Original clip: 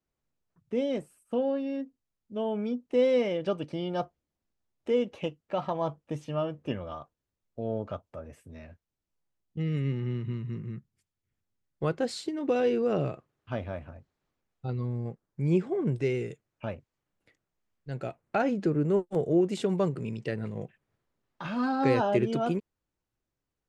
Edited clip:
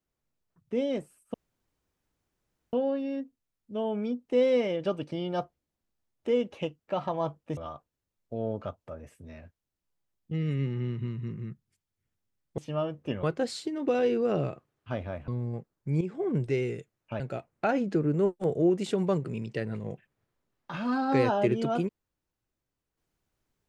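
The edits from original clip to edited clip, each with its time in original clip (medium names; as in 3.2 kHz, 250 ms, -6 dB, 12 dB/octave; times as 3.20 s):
1.34 s: insert room tone 1.39 s
6.18–6.83 s: move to 11.84 s
13.89–14.80 s: delete
15.53–15.78 s: fade in, from -13 dB
16.72–17.91 s: delete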